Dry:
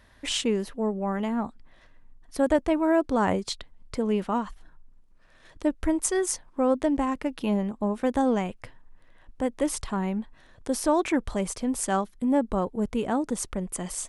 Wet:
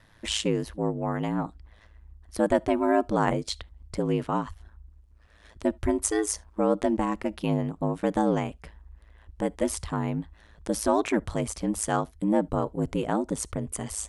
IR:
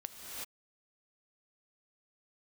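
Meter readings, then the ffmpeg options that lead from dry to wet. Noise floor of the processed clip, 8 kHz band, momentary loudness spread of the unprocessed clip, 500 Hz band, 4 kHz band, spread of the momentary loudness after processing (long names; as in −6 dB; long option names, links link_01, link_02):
−56 dBFS, −0.5 dB, 8 LU, −0.5 dB, −0.5 dB, 8 LU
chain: -filter_complex "[0:a]aeval=exprs='val(0)*sin(2*PI*54*n/s)':channel_layout=same,asplit=2[link_01][link_02];[1:a]atrim=start_sample=2205,atrim=end_sample=3528[link_03];[link_02][link_03]afir=irnorm=-1:irlink=0,volume=-6dB[link_04];[link_01][link_04]amix=inputs=2:normalize=0"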